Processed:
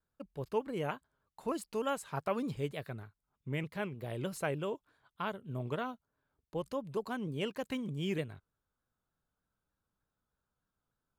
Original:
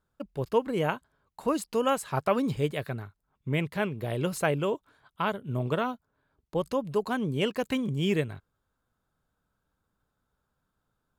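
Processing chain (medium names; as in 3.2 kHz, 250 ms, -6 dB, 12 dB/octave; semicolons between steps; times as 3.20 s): vibrato with a chosen wave saw down 3.3 Hz, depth 100 cents; trim -8.5 dB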